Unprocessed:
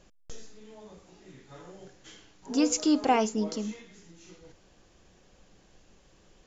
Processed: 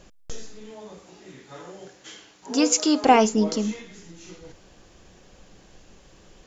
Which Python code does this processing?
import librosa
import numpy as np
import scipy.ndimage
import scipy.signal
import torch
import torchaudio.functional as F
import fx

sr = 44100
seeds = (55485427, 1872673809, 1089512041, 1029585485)

y = fx.highpass(x, sr, hz=fx.line((0.69, 150.0), (3.03, 510.0)), slope=6, at=(0.69, 3.03), fade=0.02)
y = y * 10.0 ** (8.0 / 20.0)